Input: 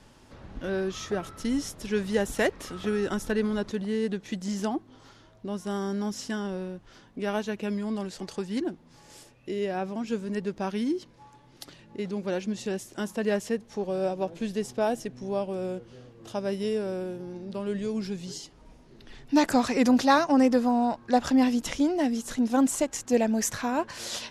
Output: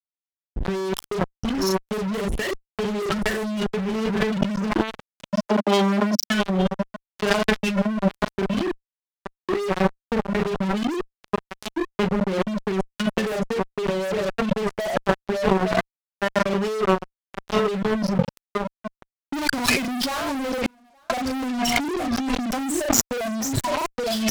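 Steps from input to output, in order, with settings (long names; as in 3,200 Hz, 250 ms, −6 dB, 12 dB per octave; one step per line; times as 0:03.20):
spectral dynamics exaggerated over time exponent 3
leveller curve on the samples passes 1
low-pass filter 5,000 Hz 12 dB per octave
double-tracking delay 37 ms −3.5 dB
single-tap delay 863 ms −12.5 dB
fuzz pedal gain 42 dB, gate −43 dBFS
0:05.46–0:06.30: Butterworth high-pass 210 Hz 48 dB per octave
0:20.66–0:21.10: noise gate −10 dBFS, range −51 dB
compressor whose output falls as the input rises −25 dBFS, ratio −1
level +2 dB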